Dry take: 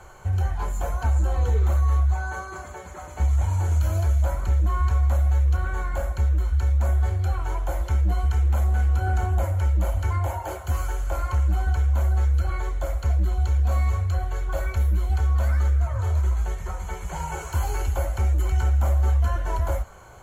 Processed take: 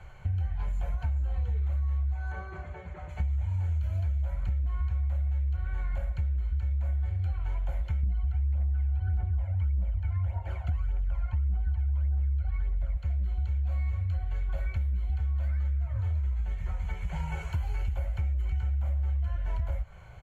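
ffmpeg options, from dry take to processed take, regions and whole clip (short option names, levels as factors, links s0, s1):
-filter_complex "[0:a]asettb=1/sr,asplit=3[s0][s1][s2];[s0]atrim=end=2.324[s3];[s1]atrim=start=2.32:end=3.09,asetpts=PTS-STARTPTS,afade=t=in:d=0.004:c=qsin,afade=t=out:st=0.766:d=0.004:c=qsin,lowpass=f=2300:p=1,equalizer=f=340:w=1.4:g=6[s4];[s2]atrim=start=3.086[s5];[s3][s4]acrossfade=d=0.004:c1=hsin:c2=qsin[s6];[s6][s5]acrossfade=d=0.004:c1=qsin:c2=hsin,asettb=1/sr,asplit=3[s7][s8][s9];[s7]atrim=end=8.034[s10];[s8]atrim=start=8.03:end=12.97,asetpts=PTS-STARTPTS,afade=t=in:d=0.004:c=qsin,afade=t=out:st=4.936:d=0.004:c=qsin,lowpass=f=2600:p=1,aphaser=in_gain=1:out_gain=1:delay=1.5:decay=0.56:speed=1.7:type=triangular[s11];[s9]atrim=start=12.966[s12];[s10][s11]acrossfade=d=0.004:c1=hsin:c2=qsin[s13];[s13][s12]acrossfade=d=0.004:c1=qsin:c2=hsin,firequalizer=gain_entry='entry(160,0);entry(270,-16);entry(600,-9);entry(1100,-13);entry(2200,-2);entry(6500,-19)':delay=0.05:min_phase=1,acompressor=threshold=0.0355:ratio=6,volume=1.26"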